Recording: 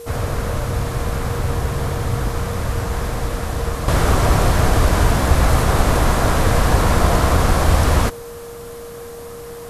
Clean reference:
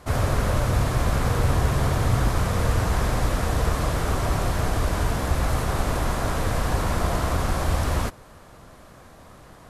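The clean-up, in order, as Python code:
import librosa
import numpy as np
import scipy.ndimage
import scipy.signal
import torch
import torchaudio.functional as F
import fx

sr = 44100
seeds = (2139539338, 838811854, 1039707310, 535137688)

y = fx.notch(x, sr, hz=470.0, q=30.0)
y = fx.noise_reduce(y, sr, print_start_s=8.8, print_end_s=9.3, reduce_db=14.0)
y = fx.fix_level(y, sr, at_s=3.88, step_db=-8.5)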